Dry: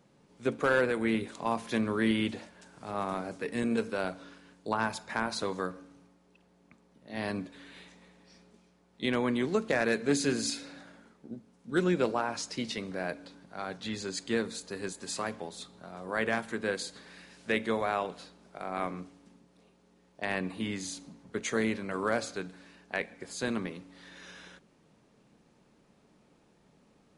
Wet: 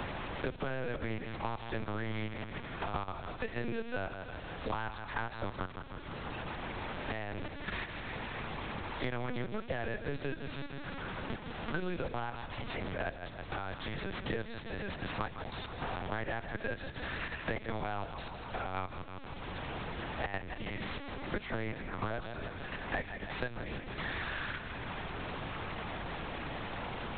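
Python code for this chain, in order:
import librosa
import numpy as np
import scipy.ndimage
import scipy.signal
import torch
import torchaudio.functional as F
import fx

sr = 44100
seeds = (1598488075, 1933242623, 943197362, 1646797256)

y = fx.delta_mod(x, sr, bps=32000, step_db=-40.0)
y = fx.highpass(y, sr, hz=200.0, slope=6)
y = fx.low_shelf(y, sr, hz=460.0, db=-5.5)
y = fx.hum_notches(y, sr, base_hz=50, count=6)
y = fx.level_steps(y, sr, step_db=12)
y = fx.echo_feedback(y, sr, ms=160, feedback_pct=47, wet_db=-10.5)
y = fx.lpc_vocoder(y, sr, seeds[0], excitation='pitch_kept', order=8)
y = fx.band_squash(y, sr, depth_pct=100)
y = F.gain(torch.from_numpy(y), 2.0).numpy()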